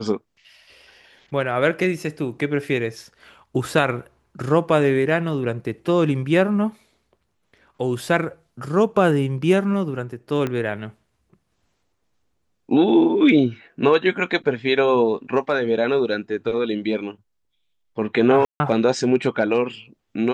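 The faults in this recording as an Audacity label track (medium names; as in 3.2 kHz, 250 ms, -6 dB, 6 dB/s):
10.470000	10.470000	pop -13 dBFS
18.450000	18.600000	dropout 150 ms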